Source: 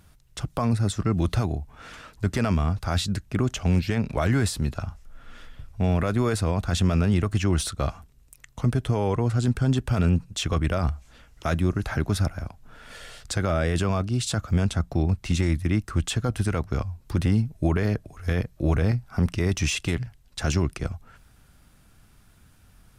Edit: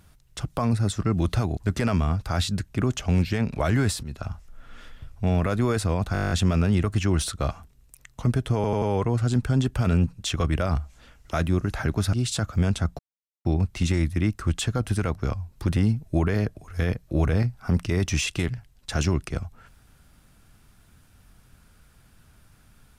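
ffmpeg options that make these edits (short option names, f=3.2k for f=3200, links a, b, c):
-filter_complex "[0:a]asplit=17[a][b][c][d][e][f][g][h][i][j][k][l][m][n][o][p][q];[a]atrim=end=1.572[r];[b]atrim=start=2.138:end=4.6,asetpts=PTS-STARTPTS,afade=t=out:st=2.458:d=0.004:c=hsin:silence=0.16788[s];[c]atrim=start=4.6:end=6.722,asetpts=PTS-STARTPTS,afade=t=in:d=0.26:silence=0.16788[t];[d]atrim=start=6.698:end=6.722[u];[e]atrim=start=6.698:end=6.722[v];[f]atrim=start=6.698:end=6.722[w];[g]atrim=start=6.698:end=6.722[x];[h]atrim=start=6.698:end=6.722[y];[i]atrim=start=6.698:end=6.722[z];[j]atrim=start=6.698:end=6.722[aa];[k]atrim=start=6.698:end=6.722[ab];[l]atrim=start=6.698:end=9.032[ac];[m]atrim=start=8.938:end=9.032[ad];[n]atrim=start=8.938:end=9.032[ae];[o]atrim=start=8.938:end=12.252[af];[p]atrim=start=14.078:end=14.94,asetpts=PTS-STARTPTS,afade=t=out:st=0.858:d=0.004:c=hsin,apad=pad_dur=0.46[ag];[q]atrim=start=14.94,asetpts=PTS-STARTPTS,afade=t=in:d=0.004:c=hsin[ah];[s][t]concat=n=2:v=0:a=1[ai];[r][ai]acrossfade=d=0.004:c1=hsin:c2=hsin[aj];[aj][u]acrossfade=d=0.004:c1=hsin:c2=hsin[ak];[ak][v]acrossfade=d=0.004:c1=hsin:c2=hsin[al];[al][w]acrossfade=d=0.004:c1=hsin:c2=hsin[am];[am][x]acrossfade=d=0.004:c1=hsin:c2=hsin[an];[an][y]acrossfade=d=0.004:c1=hsin:c2=hsin[ao];[ao][z]acrossfade=d=0.004:c1=hsin:c2=hsin[ap];[ap][aa]acrossfade=d=0.004:c1=hsin:c2=hsin[aq];[aq][ab]acrossfade=d=0.004:c1=hsin:c2=hsin[ar];[ar][ac]acrossfade=d=0.004:c1=hsin:c2=hsin[as];[as][ad]acrossfade=d=0.004:c1=hsin:c2=hsin[at];[at][ae]acrossfade=d=0.004:c1=hsin:c2=hsin[au];[au][af]acrossfade=d=0.004:c1=hsin:c2=hsin[av];[ag][ah]concat=n=2:v=0:a=1[aw];[av][aw]acrossfade=d=0.004:c1=hsin:c2=hsin"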